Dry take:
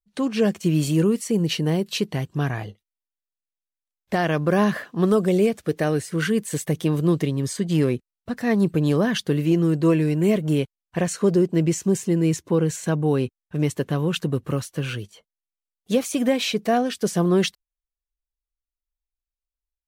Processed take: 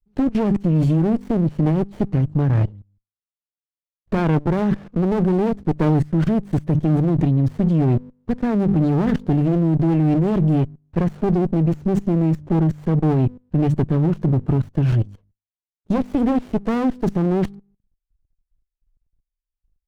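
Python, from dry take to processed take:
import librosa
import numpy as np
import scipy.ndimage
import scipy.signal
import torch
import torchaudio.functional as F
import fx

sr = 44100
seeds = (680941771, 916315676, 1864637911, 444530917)

y = scipy.signal.sosfilt(scipy.signal.butter(2, 11000.0, 'lowpass', fs=sr, output='sos'), x)
y = fx.tilt_eq(y, sr, slope=-4.0)
y = fx.hum_notches(y, sr, base_hz=50, count=5)
y = fx.level_steps(y, sr, step_db=22)
y = fx.running_max(y, sr, window=33)
y = F.gain(torch.from_numpy(y), 6.0).numpy()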